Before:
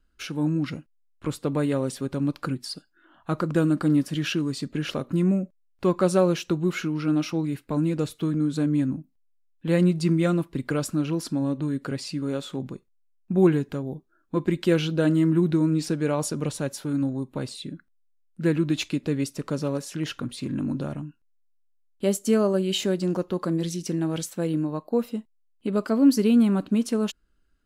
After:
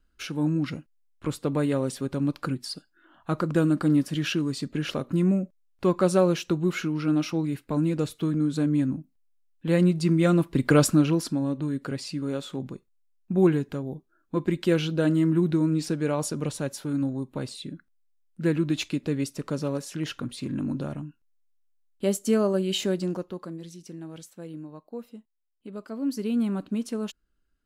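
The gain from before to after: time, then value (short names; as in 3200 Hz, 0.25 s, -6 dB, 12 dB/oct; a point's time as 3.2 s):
10.1 s -0.5 dB
10.81 s +8.5 dB
11.42 s -1.5 dB
22.98 s -1.5 dB
23.6 s -13.5 dB
25.86 s -13.5 dB
26.45 s -6 dB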